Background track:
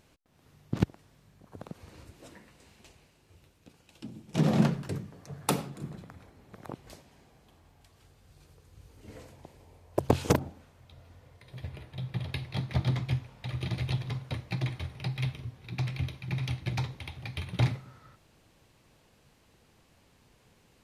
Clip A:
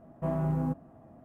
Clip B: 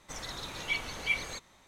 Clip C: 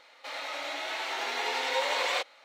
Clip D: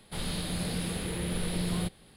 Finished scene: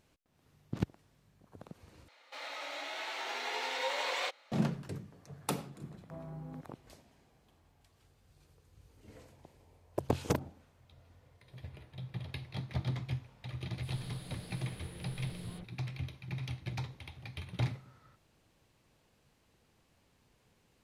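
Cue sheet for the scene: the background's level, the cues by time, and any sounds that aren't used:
background track −7 dB
0:02.08: overwrite with C −6 dB
0:05.88: mix in A −16 dB
0:13.70: mix in D −15.5 dB + all-pass dispersion lows, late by 63 ms, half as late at 3,000 Hz
not used: B

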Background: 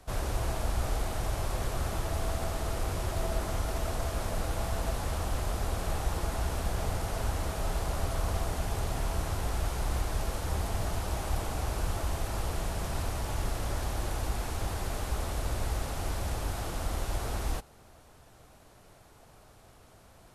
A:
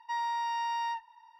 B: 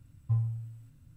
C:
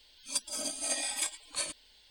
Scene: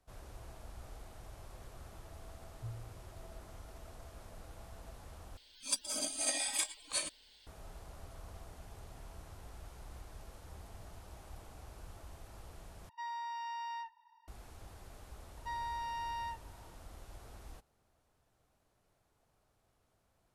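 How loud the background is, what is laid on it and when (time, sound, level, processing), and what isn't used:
background −19.5 dB
0:02.33: mix in B −16.5 dB
0:05.37: overwrite with C −1.5 dB
0:12.89: overwrite with A −9 dB
0:15.37: mix in A −7.5 dB

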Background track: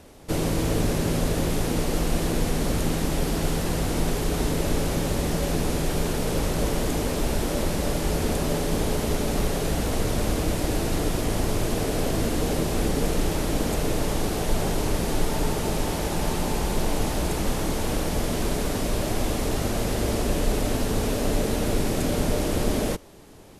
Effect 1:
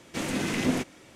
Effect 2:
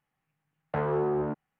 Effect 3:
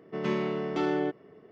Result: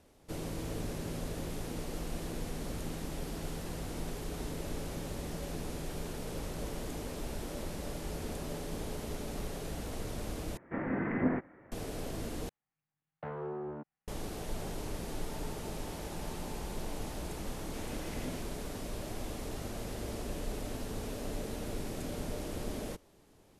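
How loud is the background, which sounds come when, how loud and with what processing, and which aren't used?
background track −14.5 dB
0:10.57: overwrite with 1 −3 dB + elliptic low-pass filter 1,900 Hz, stop band 60 dB
0:12.49: overwrite with 2 −12 dB
0:17.59: mix in 1 −17.5 dB
not used: 3

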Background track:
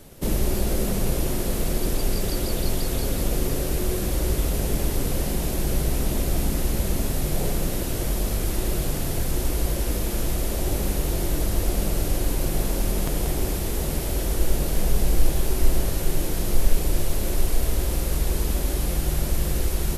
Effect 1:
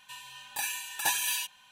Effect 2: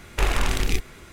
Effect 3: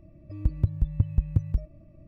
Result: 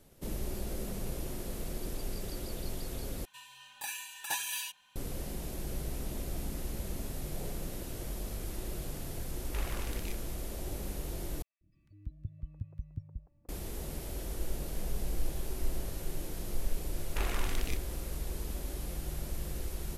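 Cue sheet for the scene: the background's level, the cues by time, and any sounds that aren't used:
background track −14 dB
0:03.25: overwrite with 1 −6.5 dB
0:09.36: mix in 2 −17.5 dB
0:11.42: overwrite with 3 −17 dB + three-band delay without the direct sound highs, lows, mids 190/670 ms, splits 400/1,400 Hz
0:16.98: mix in 2 −12.5 dB

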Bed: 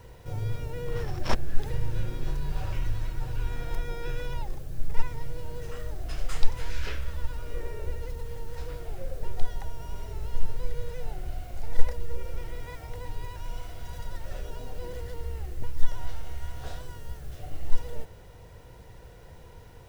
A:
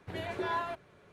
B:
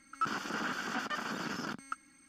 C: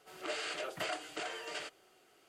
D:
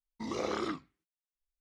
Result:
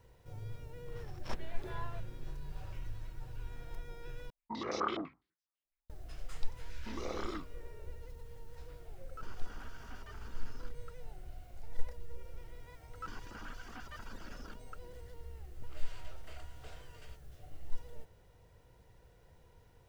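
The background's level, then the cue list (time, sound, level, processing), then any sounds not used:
bed −13.5 dB
0:01.25: mix in A −12.5 dB + low-pass filter 7,800 Hz
0:04.30: overwrite with D −4.5 dB + low-pass on a step sequencer 12 Hz 680–5,500 Hz
0:06.66: mix in D −6.5 dB
0:08.96: mix in B −18 dB
0:12.81: mix in B −12.5 dB + reverb reduction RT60 0.76 s
0:15.47: mix in C −18 dB

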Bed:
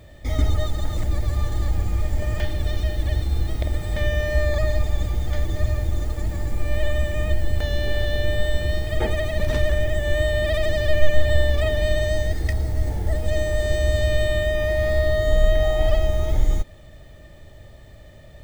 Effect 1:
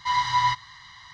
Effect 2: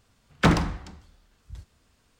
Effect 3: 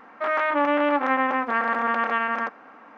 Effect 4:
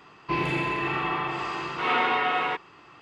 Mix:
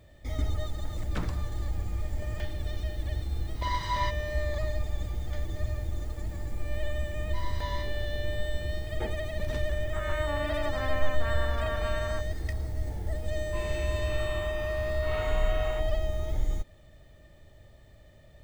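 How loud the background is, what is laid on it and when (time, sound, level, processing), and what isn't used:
bed −9.5 dB
0:00.72: mix in 2 −17.5 dB
0:03.56: mix in 1 −9 dB
0:07.28: mix in 1 −18 dB + peak hold with a decay on every bin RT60 0.30 s
0:09.72: mix in 3 −14.5 dB
0:13.24: mix in 4 −15.5 dB

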